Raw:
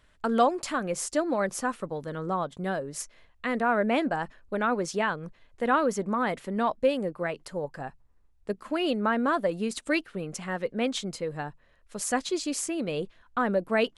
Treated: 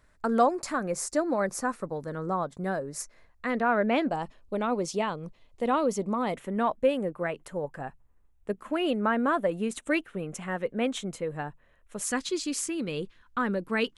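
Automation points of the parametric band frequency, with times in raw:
parametric band −12 dB 0.52 octaves
3,100 Hz
from 0:03.50 8,900 Hz
from 0:04.09 1,600 Hz
from 0:06.34 4,700 Hz
from 0:12.04 660 Hz

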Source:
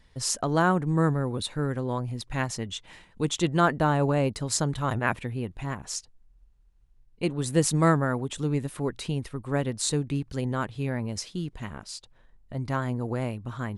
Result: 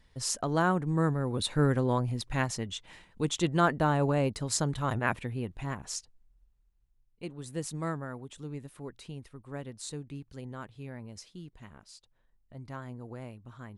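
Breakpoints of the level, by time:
0:01.18 −4 dB
0:01.62 +3.5 dB
0:02.76 −3 dB
0:05.88 −3 dB
0:07.30 −13 dB

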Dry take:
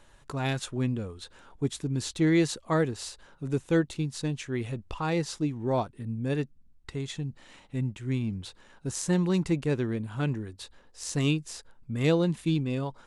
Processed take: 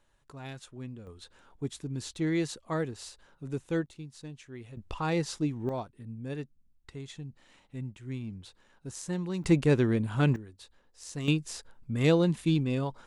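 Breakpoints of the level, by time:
−13 dB
from 0:01.07 −6 dB
from 0:03.86 −13 dB
from 0:04.77 −1 dB
from 0:05.69 −8 dB
from 0:09.44 +4 dB
from 0:10.36 −8.5 dB
from 0:11.28 +0.5 dB

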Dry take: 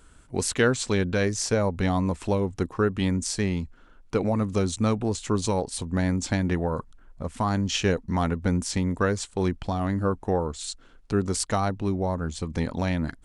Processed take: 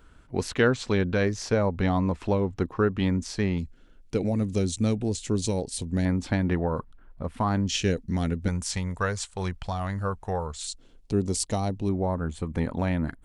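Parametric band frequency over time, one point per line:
parametric band −14 dB 1.1 octaves
8,700 Hz
from 0:03.58 1,100 Hz
from 0:06.05 7,100 Hz
from 0:07.67 1,000 Hz
from 0:08.48 290 Hz
from 0:10.67 1,400 Hz
from 0:11.89 5,400 Hz

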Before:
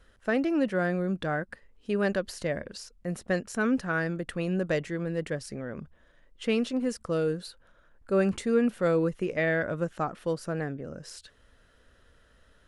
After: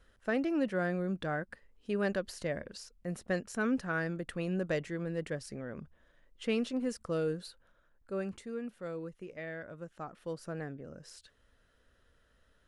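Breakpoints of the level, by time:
0:07.46 −5 dB
0:08.57 −15.5 dB
0:09.79 −15.5 dB
0:10.45 −8 dB

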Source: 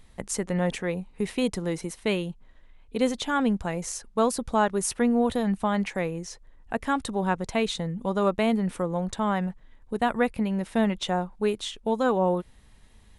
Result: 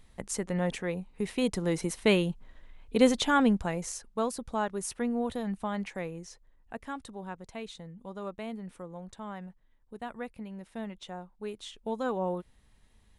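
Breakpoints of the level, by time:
0:01.29 −4 dB
0:01.95 +2.5 dB
0:03.23 +2.5 dB
0:04.31 −8 dB
0:06.21 −8 dB
0:07.28 −15 dB
0:11.33 −15 dB
0:11.82 −8 dB

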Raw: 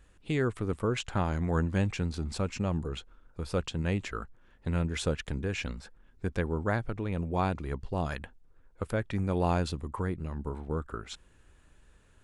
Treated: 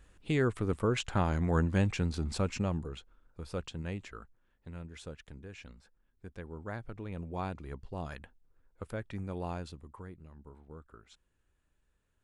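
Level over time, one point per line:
0:02.57 0 dB
0:02.97 −7 dB
0:03.73 −7 dB
0:04.74 −15 dB
0:06.32 −15 dB
0:07.02 −8 dB
0:09.13 −8 dB
0:10.32 −16.5 dB

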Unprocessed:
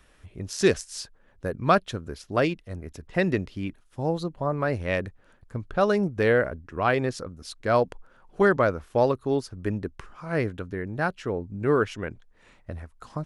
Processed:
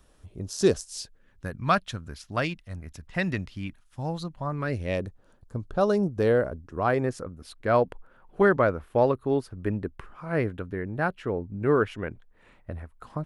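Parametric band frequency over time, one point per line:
parametric band −11 dB 1.2 octaves
0:00.82 2,100 Hz
0:01.53 410 Hz
0:04.43 410 Hz
0:05.06 2,100 Hz
0:06.70 2,100 Hz
0:07.41 6,000 Hz

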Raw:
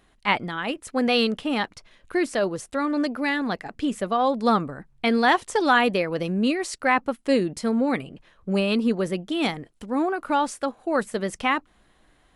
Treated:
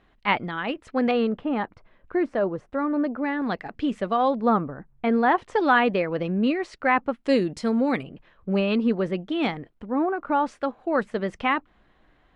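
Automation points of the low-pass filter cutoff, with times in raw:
3,100 Hz
from 0:01.11 1,400 Hz
from 0:03.42 3,500 Hz
from 0:04.40 1,500 Hz
from 0:05.38 2,600 Hz
from 0:07.24 6,000 Hz
from 0:08.03 2,900 Hz
from 0:09.74 1,700 Hz
from 0:10.46 2,900 Hz

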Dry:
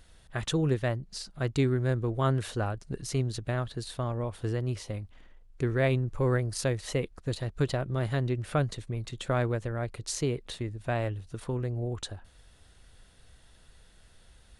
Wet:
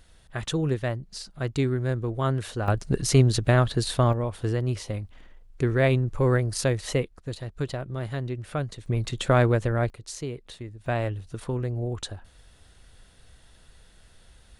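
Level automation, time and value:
+1 dB
from 0:02.68 +11 dB
from 0:04.13 +4.5 dB
from 0:07.03 −2 dB
from 0:08.86 +8 dB
from 0:09.90 −4 dB
from 0:10.86 +3 dB

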